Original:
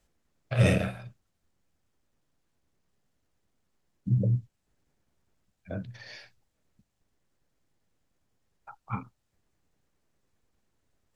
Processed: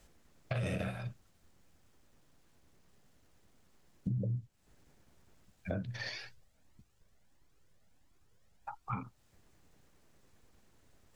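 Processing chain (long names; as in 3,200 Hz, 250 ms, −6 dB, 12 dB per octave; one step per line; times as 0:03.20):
brickwall limiter −23 dBFS, peak gain reduction 11.5 dB
downward compressor 4 to 1, threshold −45 dBFS, peak gain reduction 15.5 dB
0:06.09–0:08.93: flanger whose copies keep moving one way rising 1.5 Hz
level +9.5 dB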